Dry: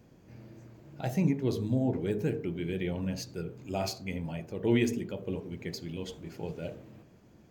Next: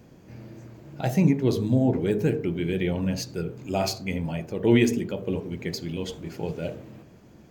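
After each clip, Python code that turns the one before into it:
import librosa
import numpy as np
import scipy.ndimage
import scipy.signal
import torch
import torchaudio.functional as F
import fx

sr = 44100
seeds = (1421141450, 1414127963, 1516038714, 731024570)

y = fx.hum_notches(x, sr, base_hz=50, count=2)
y = y * 10.0 ** (7.0 / 20.0)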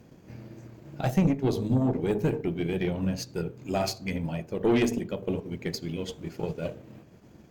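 y = fx.tube_stage(x, sr, drive_db=17.0, bias=0.45)
y = fx.transient(y, sr, attack_db=3, sustain_db=-5)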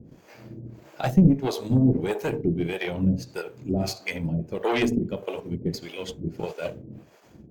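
y = fx.harmonic_tremolo(x, sr, hz=1.6, depth_pct=100, crossover_hz=470.0)
y = y * 10.0 ** (7.5 / 20.0)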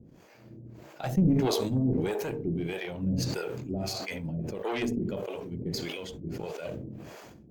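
y = fx.sustainer(x, sr, db_per_s=23.0)
y = y * 10.0 ** (-8.0 / 20.0)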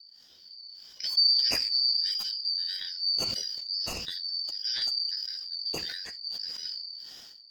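y = fx.band_shuffle(x, sr, order='4321')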